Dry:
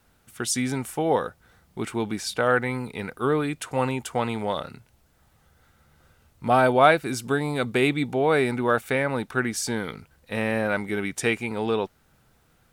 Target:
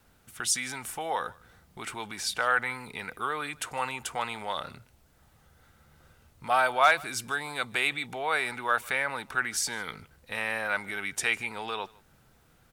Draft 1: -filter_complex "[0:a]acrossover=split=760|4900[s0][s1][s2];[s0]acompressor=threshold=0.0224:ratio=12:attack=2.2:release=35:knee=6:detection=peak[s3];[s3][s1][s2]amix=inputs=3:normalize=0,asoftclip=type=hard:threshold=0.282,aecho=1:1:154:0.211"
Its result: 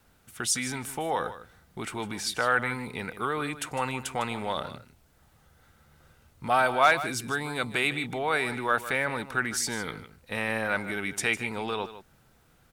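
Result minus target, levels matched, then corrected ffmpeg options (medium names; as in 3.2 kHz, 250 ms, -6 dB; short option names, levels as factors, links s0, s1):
compression: peak gain reduction -9.5 dB; echo-to-direct +11 dB
-filter_complex "[0:a]acrossover=split=760|4900[s0][s1][s2];[s0]acompressor=threshold=0.00668:ratio=12:attack=2.2:release=35:knee=6:detection=peak[s3];[s3][s1][s2]amix=inputs=3:normalize=0,asoftclip=type=hard:threshold=0.282,aecho=1:1:154:0.0596"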